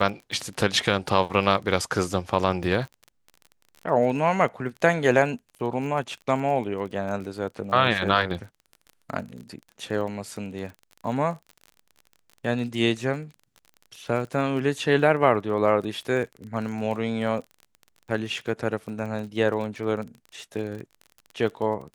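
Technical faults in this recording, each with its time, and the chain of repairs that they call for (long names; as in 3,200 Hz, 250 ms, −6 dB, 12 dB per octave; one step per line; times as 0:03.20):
surface crackle 31 per second −34 dBFS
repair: click removal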